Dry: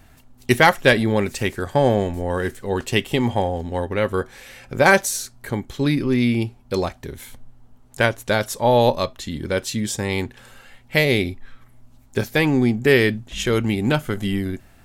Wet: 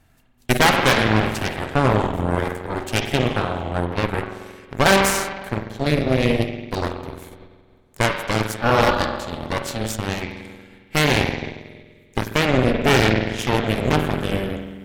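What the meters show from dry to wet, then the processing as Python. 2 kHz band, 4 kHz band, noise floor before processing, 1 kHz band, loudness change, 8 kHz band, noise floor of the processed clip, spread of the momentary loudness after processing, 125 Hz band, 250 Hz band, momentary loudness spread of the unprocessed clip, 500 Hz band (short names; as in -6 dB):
-0.5 dB, +2.5 dB, -51 dBFS, +2.0 dB, 0.0 dB, +0.5 dB, -53 dBFS, 13 LU, +1.0 dB, -1.0 dB, 13 LU, -1.5 dB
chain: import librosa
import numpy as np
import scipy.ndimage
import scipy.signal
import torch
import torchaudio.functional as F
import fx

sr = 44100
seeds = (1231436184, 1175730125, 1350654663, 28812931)

y = fx.rev_spring(x, sr, rt60_s=1.9, pass_ms=(46,), chirp_ms=25, drr_db=2.0)
y = fx.cheby_harmonics(y, sr, harmonics=(7, 8), levels_db=(-26, -11), full_scale_db=1.0)
y = y * 10.0 ** (-4.5 / 20.0)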